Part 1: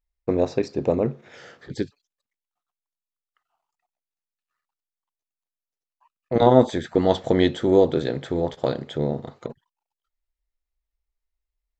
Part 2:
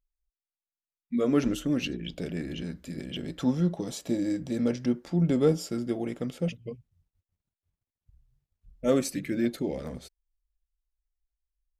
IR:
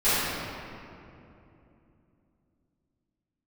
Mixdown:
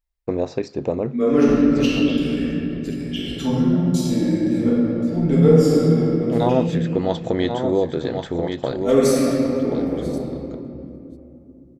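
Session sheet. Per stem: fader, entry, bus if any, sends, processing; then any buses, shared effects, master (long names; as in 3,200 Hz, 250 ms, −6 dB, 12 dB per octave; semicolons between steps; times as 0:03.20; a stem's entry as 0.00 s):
+1.0 dB, 0.00 s, no send, echo send −8 dB, no processing
+0.5 dB, 0.00 s, send −6 dB, echo send −19.5 dB, gate pattern "x..xxxxx.xxx" 80 BPM −60 dB; multiband upward and downward expander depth 70%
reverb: on, RT60 2.9 s, pre-delay 3 ms
echo: single-tap delay 1,083 ms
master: downward compressor 1.5 to 1, threshold −22 dBFS, peak gain reduction 8 dB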